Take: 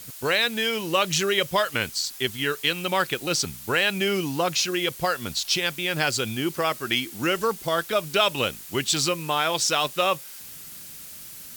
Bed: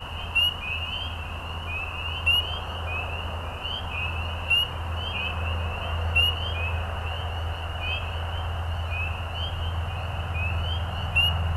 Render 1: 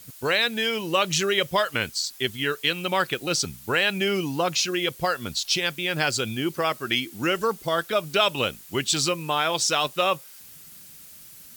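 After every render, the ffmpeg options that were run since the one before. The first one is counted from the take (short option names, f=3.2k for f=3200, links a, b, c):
-af "afftdn=nr=6:nf=-41"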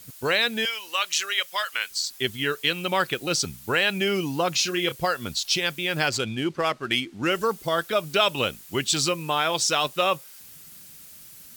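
-filter_complex "[0:a]asettb=1/sr,asplit=3[a][b][c];[a]atrim=end=0.654[d];[b]atrim=start=0.65:end=1.91,asetpts=PTS-STARTPTS,afade=t=in:d=0.004:c=qsin,afade=t=out:st=1.256:d=0.004:c=qsin,highpass=1.2k[e];[c]atrim=start=1.906[f];[d][e]acrossfade=d=0.004:c1=hsin:c2=qsin[g];[g][f]acrossfade=d=0.004:c1=qsin:c2=hsin,asettb=1/sr,asplit=3[h][i][j];[h]atrim=end=4.524[k];[i]atrim=start=4.52:end=4.96,asetpts=PTS-STARTPTS,afade=t=in:d=0.004:c=qsin,afade=t=out:st=0.436:d=0.004:c=qsin,asplit=2[l][m];[m]adelay=29,volume=-9dB[n];[l][n]amix=inputs=2:normalize=0,atrim=end_sample=19404[o];[j]atrim=start=4.956[p];[k][o]acrossfade=d=0.004:c1=hsin:c2=qsin[q];[q][p]acrossfade=d=0.004:c1=qsin:c2=hsin,asettb=1/sr,asplit=3[r][s][t];[r]atrim=end=6.084[u];[s]atrim=start=6.08:end=7.3,asetpts=PTS-STARTPTS,afade=t=in:d=0.004:c=qsin,afade=t=out:st=1.216:d=0.004:c=qsin,adynamicsmooth=sensitivity=7:basefreq=3.7k[v];[t]atrim=start=7.296[w];[u][v]acrossfade=d=0.004:c1=hsin:c2=qsin[x];[x][w]acrossfade=d=0.004:c1=qsin:c2=hsin"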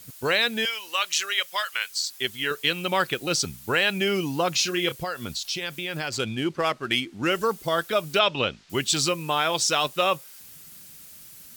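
-filter_complex "[0:a]asettb=1/sr,asplit=3[a][b][c];[a]atrim=end=1.604[d];[b]atrim=start=1.6:end=2.51,asetpts=PTS-STARTPTS,afade=t=in:d=0.004:c=qsin,afade=t=out:st=0.906:d=0.004:c=qsin,lowshelf=f=340:g=-9.5[e];[c]atrim=start=2.506[f];[d][e]acrossfade=d=0.004:c1=hsin:c2=qsin[g];[g][f]acrossfade=d=0.004:c1=qsin:c2=hsin,asettb=1/sr,asplit=3[h][i][j];[h]atrim=end=4.974[k];[i]atrim=start=4.97:end=6.18,asetpts=PTS-STARTPTS,afade=t=in:d=0.004:c=qsin,afade=t=out:st=1.206:d=0.004:c=qsin,acompressor=threshold=-27dB:ratio=3:attack=3.2:release=140:knee=1:detection=peak[l];[j]atrim=start=6.176[m];[k][l]acrossfade=d=0.004:c1=hsin:c2=qsin[n];[n][m]acrossfade=d=0.004:c1=qsin:c2=hsin,asettb=1/sr,asplit=3[o][p][q];[o]atrim=end=8.194[r];[p]atrim=start=8.19:end=8.7,asetpts=PTS-STARTPTS,afade=t=in:d=0.004:c=qsin,afade=t=out:st=0.506:d=0.004:c=qsin,lowpass=f=5.2k:w=0.5412,lowpass=f=5.2k:w=1.3066[s];[q]atrim=start=8.696[t];[r][s]acrossfade=d=0.004:c1=hsin:c2=qsin[u];[u][t]acrossfade=d=0.004:c1=qsin:c2=hsin"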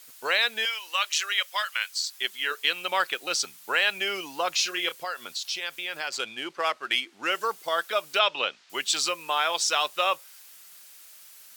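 -af "highpass=670,highshelf=f=6.6k:g=-4.5"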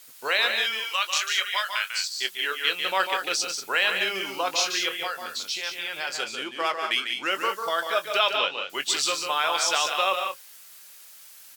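-filter_complex "[0:a]asplit=2[a][b];[b]adelay=21,volume=-11dB[c];[a][c]amix=inputs=2:normalize=0,aecho=1:1:145.8|186.6:0.447|0.398"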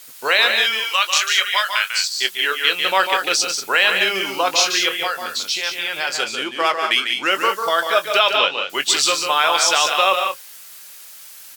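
-af "volume=8dB,alimiter=limit=-3dB:level=0:latency=1"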